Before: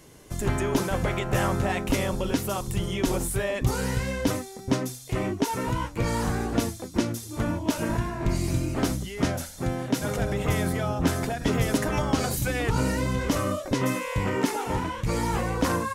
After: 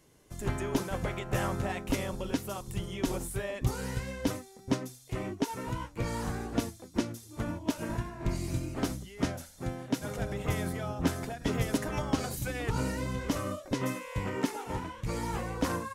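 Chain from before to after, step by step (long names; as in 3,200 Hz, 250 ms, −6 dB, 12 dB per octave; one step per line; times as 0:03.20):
expander for the loud parts 1.5 to 1, over −34 dBFS
level −4 dB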